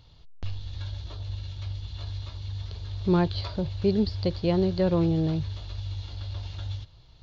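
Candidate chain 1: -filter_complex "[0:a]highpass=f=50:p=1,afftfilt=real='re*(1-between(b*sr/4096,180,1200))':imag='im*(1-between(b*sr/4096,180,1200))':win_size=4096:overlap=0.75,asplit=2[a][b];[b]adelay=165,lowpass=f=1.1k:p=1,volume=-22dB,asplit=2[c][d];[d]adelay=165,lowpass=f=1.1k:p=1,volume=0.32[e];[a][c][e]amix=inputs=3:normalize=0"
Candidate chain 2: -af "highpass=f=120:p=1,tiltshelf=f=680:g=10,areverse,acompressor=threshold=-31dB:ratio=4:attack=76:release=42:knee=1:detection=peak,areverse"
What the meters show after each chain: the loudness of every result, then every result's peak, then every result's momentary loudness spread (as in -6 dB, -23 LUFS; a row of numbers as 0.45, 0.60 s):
-34.0, -30.0 LUFS; -18.0, -16.0 dBFS; 9, 6 LU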